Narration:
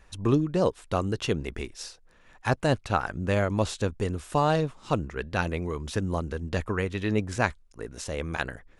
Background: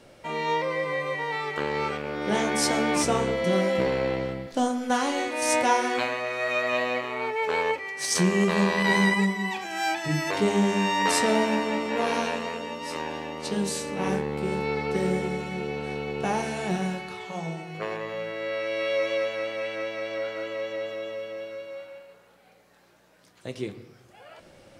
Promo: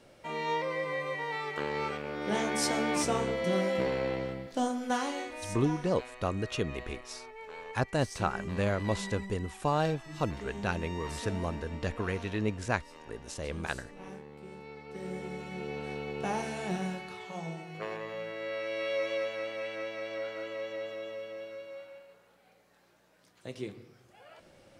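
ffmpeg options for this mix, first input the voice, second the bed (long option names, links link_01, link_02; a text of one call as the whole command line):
ffmpeg -i stem1.wav -i stem2.wav -filter_complex "[0:a]adelay=5300,volume=-5dB[link_01];[1:a]volume=7.5dB,afade=type=out:start_time=4.9:duration=0.65:silence=0.211349,afade=type=in:start_time=14.86:duration=0.91:silence=0.223872[link_02];[link_01][link_02]amix=inputs=2:normalize=0" out.wav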